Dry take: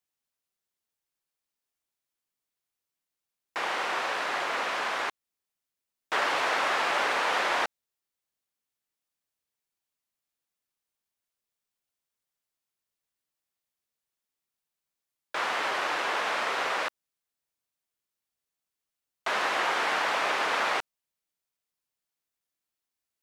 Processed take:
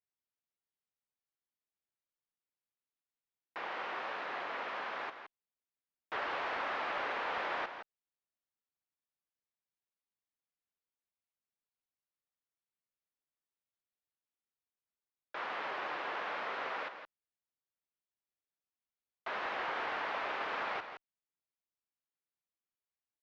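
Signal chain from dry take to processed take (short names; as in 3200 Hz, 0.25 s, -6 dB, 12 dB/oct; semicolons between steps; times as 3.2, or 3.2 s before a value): one-sided clip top -21 dBFS; air absorption 240 m; on a send: echo 0.167 s -9 dB; on the sum: gain -8.5 dB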